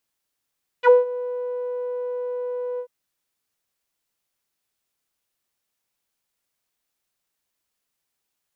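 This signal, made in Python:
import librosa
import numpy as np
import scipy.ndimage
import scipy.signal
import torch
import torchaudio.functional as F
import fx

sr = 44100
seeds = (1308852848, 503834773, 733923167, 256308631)

y = fx.sub_voice(sr, note=71, wave='saw', cutoff_hz=620.0, q=3.9, env_oct=2.5, env_s=0.06, attack_ms=56.0, decay_s=0.16, sustain_db=-18.0, release_s=0.08, note_s=1.96, slope=12)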